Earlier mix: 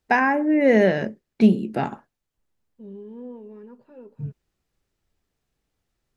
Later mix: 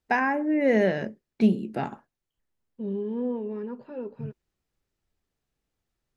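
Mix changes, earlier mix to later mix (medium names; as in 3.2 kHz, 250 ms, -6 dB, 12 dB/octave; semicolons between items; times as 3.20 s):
first voice -5.0 dB; second voice +9.0 dB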